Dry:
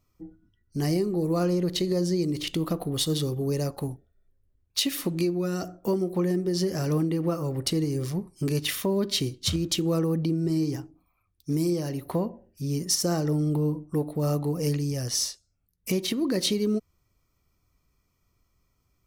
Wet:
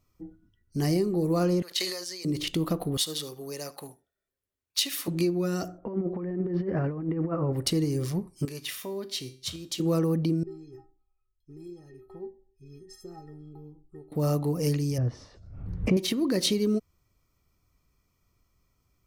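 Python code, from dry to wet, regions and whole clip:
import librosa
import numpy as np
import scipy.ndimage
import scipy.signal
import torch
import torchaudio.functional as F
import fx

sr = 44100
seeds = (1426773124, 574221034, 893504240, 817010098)

y = fx.chain(x, sr, fx.highpass(hz=1300.0, slope=12),
    fx.sustainer(db_per_s=46.0), at=(1.62, 2.25))
y = fx.chain(y, sr, fx.highpass(hz=1100.0, slope=6),
    fx.echo_single(ms=74, db=-19.5), at=(2.97, 5.08))
y = fx.chain(y, sr, fx.lowpass(hz=2000.0, slope=24),
    fx.over_compress(threshold_db=-28.0, ratio=-0.5), at=(5.78, 7.53))
y = fx.chain(y, sr, fx.low_shelf(hz=390.0, db=-9.5),
    fx.notch(hz=1400.0, q=25.0),
    fx.comb_fb(f0_hz=130.0, decay_s=0.47, harmonics='all', damping=0.0, mix_pct=60), at=(8.45, 9.8))
y = fx.chain(y, sr, fx.riaa(side='playback'),
    fx.stiff_resonator(f0_hz=380.0, decay_s=0.35, stiffness=0.03), at=(10.43, 14.12))
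y = fx.chain(y, sr, fx.lowpass(hz=1200.0, slope=12),
    fx.peak_eq(hz=100.0, db=6.5, octaves=2.2),
    fx.pre_swell(db_per_s=59.0), at=(14.98, 15.97))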